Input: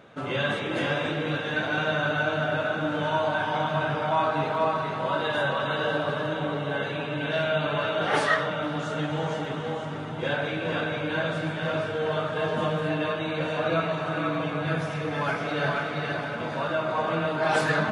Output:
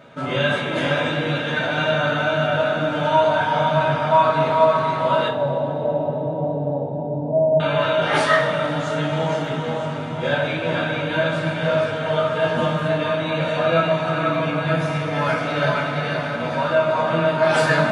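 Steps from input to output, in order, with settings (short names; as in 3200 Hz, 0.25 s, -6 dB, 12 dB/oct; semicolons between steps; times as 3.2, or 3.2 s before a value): 5.28–7.6 steep low-pass 900 Hz 72 dB/oct; two-slope reverb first 0.23 s, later 3.5 s, from -20 dB, DRR -2 dB; gain +2 dB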